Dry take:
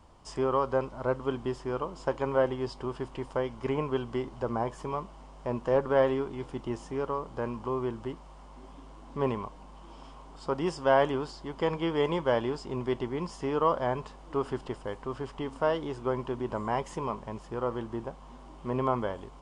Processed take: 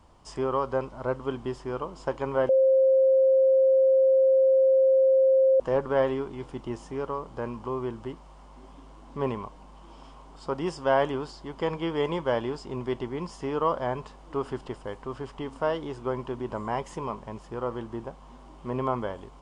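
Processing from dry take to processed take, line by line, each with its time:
2.49–5.6 bleep 530 Hz -16.5 dBFS

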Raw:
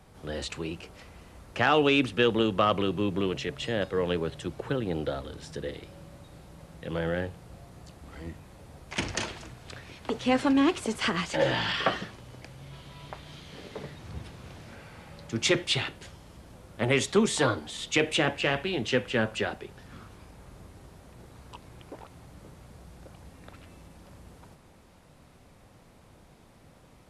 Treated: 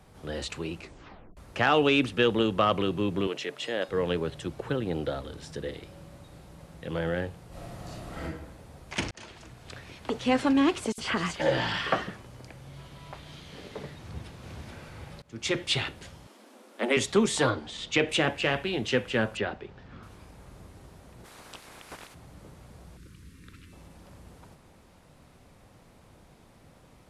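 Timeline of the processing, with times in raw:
0.77 tape stop 0.60 s
3.27–3.89 HPF 320 Hz
7.48–8.22 reverb throw, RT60 0.98 s, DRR -8 dB
9.11–9.9 fade in equal-power
10.92–13.13 bands offset in time highs, lows 60 ms, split 3300 Hz
13.99–14.46 echo throw 0.43 s, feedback 70%, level -3 dB
15.22–15.73 fade in, from -23.5 dB
16.27–16.97 steep high-pass 210 Hz 96 dB/oct
17.5–18.09 LPF 5800 Hz
19.37–20.03 air absorption 160 m
21.24–22.13 spectral limiter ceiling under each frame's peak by 22 dB
22.97–23.73 Butterworth band-stop 710 Hz, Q 0.71

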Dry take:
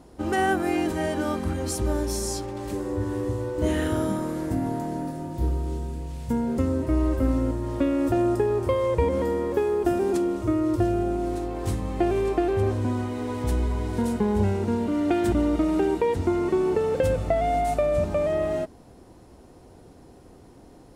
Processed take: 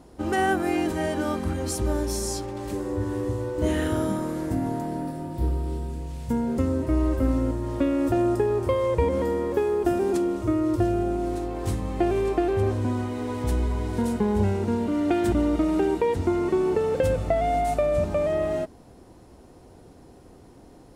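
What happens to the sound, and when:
4.81–5.9 bell 6500 Hz -8.5 dB 0.2 oct

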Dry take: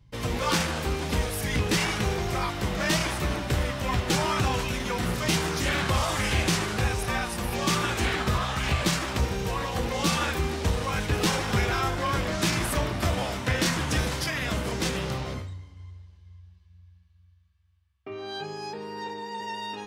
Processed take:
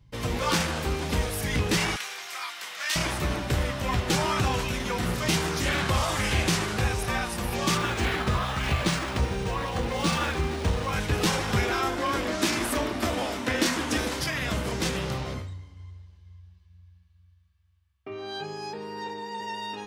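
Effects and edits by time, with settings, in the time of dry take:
1.96–2.96 HPF 1500 Hz
7.77–10.93 decimation joined by straight lines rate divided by 3×
11.62–14.2 resonant low shelf 200 Hz -6.5 dB, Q 3

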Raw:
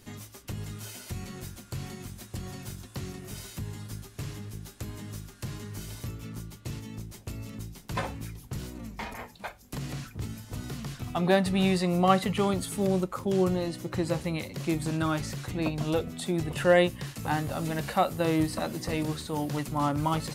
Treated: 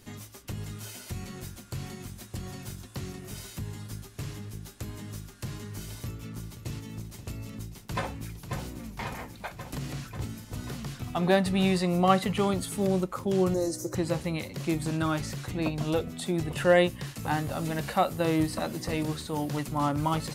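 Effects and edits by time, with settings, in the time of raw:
5.89–6.78 echo throw 0.53 s, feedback 45%, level -12 dB
7.75–8.82 echo throw 0.54 s, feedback 75%, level -7.5 dB
13.54–13.95 EQ curve 120 Hz 0 dB, 210 Hz -11 dB, 320 Hz +4 dB, 520 Hz +4 dB, 810 Hz -4 dB, 1700 Hz -5 dB, 3100 Hz -18 dB, 5900 Hz +14 dB, 11000 Hz +8 dB

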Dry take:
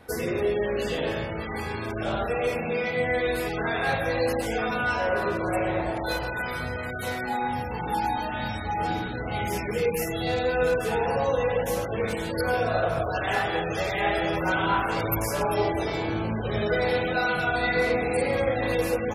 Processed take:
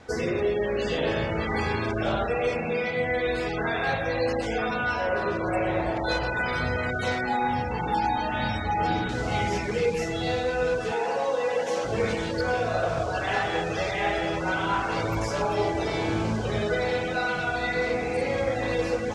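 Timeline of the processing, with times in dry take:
9.09 noise floor step -61 dB -43 dB
10.92–11.85 HPF 300 Hz
whole clip: LPF 6800 Hz 24 dB/oct; vocal rider 0.5 s

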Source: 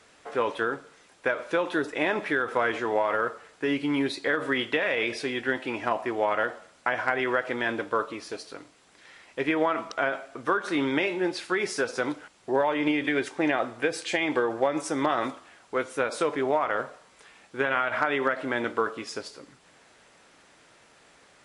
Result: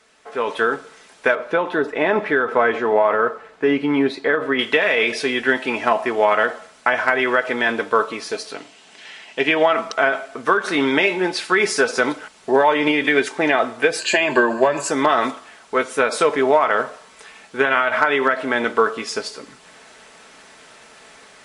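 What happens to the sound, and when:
1.35–4.59 LPF 1300 Hz 6 dB/oct
8.52–9.73 speaker cabinet 110–9100 Hz, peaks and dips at 500 Hz -3 dB, 730 Hz +3 dB, 1200 Hz -5 dB, 2900 Hz +8 dB
13.99–14.91 ripple EQ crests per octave 1.4, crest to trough 13 dB
whole clip: low shelf 330 Hz -5 dB; comb 4.6 ms, depth 41%; AGC gain up to 11.5 dB

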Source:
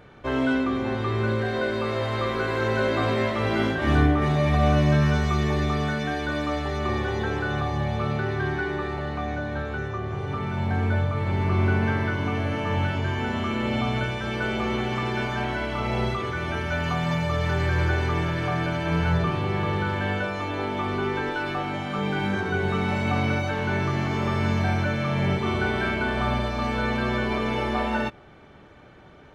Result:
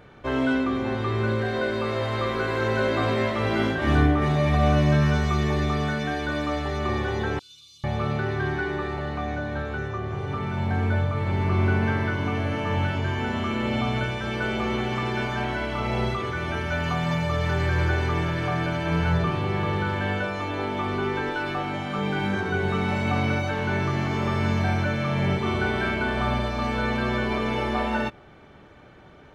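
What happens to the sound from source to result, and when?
7.39–7.84 inverse Chebyshev high-pass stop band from 1900 Hz

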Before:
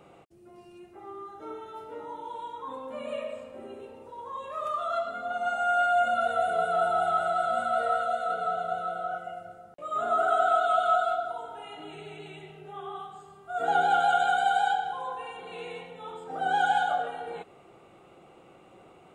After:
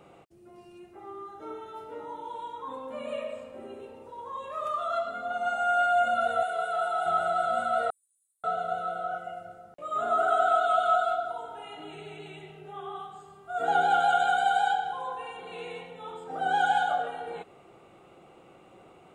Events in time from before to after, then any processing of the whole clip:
6.43–7.06 HPF 880 Hz 6 dB/oct
7.9–8.44 inverse Chebyshev high-pass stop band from 2300 Hz, stop band 80 dB

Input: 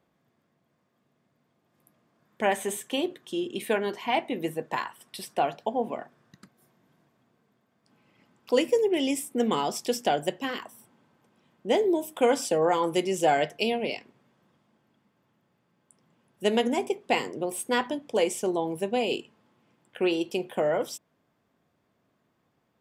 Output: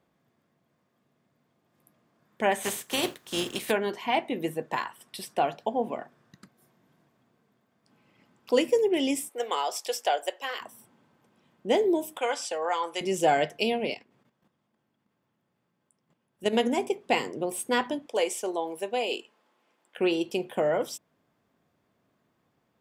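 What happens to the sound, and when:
2.62–3.7 spectral contrast lowered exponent 0.52
9.29–10.61 HPF 500 Hz 24 dB/oct
12.18–13.01 BPF 760–7600 Hz
13.94–16.53 level quantiser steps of 11 dB
18.06–19.98 HPF 440 Hz

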